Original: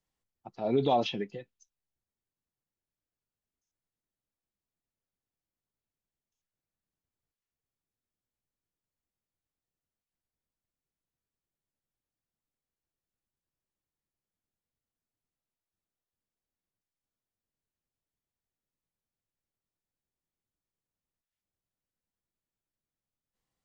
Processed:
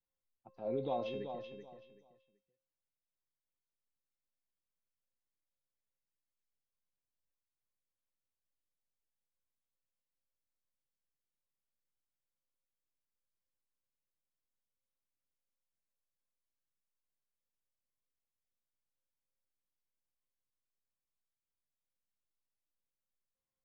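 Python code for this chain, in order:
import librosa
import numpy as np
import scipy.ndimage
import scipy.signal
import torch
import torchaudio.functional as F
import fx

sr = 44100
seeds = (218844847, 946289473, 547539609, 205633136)

p1 = fx.lowpass(x, sr, hz=1600.0, slope=6)
p2 = fx.comb_fb(p1, sr, f0_hz=530.0, decay_s=0.57, harmonics='all', damping=0.0, mix_pct=90)
p3 = p2 + fx.echo_feedback(p2, sr, ms=381, feedback_pct=23, wet_db=-8.0, dry=0)
y = p3 * 10.0 ** (7.5 / 20.0)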